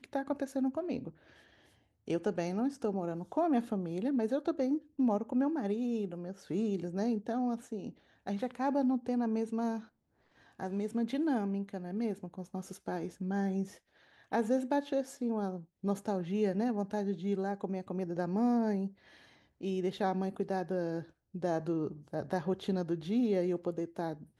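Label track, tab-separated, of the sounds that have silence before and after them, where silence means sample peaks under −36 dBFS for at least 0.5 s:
2.080000	9.780000	sound
10.600000	13.640000	sound
14.320000	18.870000	sound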